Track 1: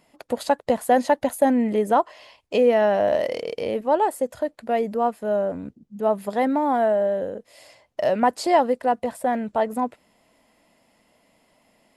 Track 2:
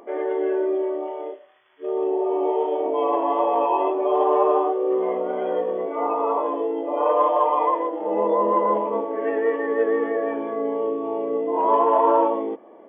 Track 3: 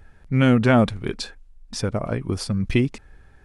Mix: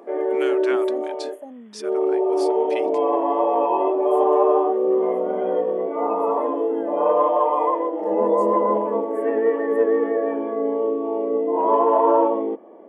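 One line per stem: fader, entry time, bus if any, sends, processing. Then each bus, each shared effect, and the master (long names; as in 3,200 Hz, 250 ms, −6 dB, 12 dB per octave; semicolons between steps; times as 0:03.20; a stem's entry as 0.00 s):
−12.0 dB, 0.00 s, no send, flat-topped bell 3,500 Hz −15 dB 1.3 octaves; notch comb filter 360 Hz; flanger swept by the level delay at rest 2.1 ms, full sweep at −15 dBFS; automatic ducking −9 dB, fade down 2.00 s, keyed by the third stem
0.0 dB, 0.00 s, no send, tilt shelving filter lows +4 dB
−6.0 dB, 0.00 s, no send, Butterworth high-pass 820 Hz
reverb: not used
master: elliptic high-pass filter 190 Hz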